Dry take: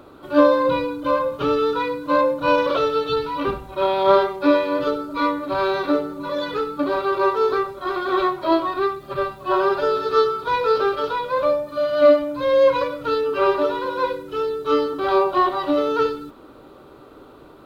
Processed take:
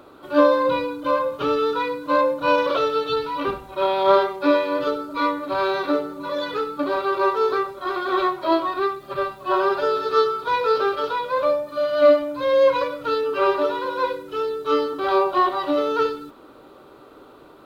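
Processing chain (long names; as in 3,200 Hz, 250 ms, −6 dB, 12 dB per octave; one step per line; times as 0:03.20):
low-shelf EQ 210 Hz −8 dB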